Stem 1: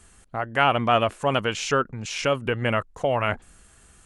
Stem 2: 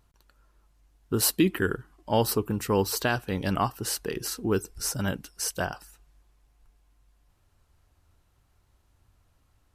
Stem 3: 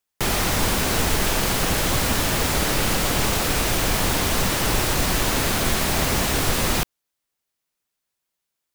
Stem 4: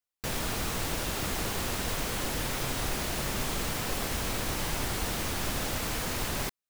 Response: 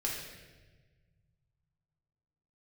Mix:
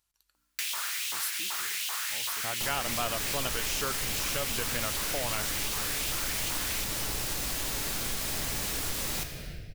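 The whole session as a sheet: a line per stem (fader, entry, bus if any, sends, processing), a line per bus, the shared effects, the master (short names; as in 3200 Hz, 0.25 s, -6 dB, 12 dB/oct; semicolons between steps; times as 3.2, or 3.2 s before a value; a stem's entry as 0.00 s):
-2.0 dB, 2.10 s, no send, dry
-19.0 dB, 0.00 s, send -12 dB, tilt shelf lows -7 dB
-12.0 dB, 2.40 s, send -3.5 dB, dry
+1.0 dB, 0.35 s, no send, hum 60 Hz, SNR 20 dB; LFO high-pass saw up 2.6 Hz 960–3100 Hz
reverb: on, RT60 1.3 s, pre-delay 4 ms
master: high shelf 2700 Hz +10 dB; compressor 2.5:1, threshold -34 dBFS, peak gain reduction 14 dB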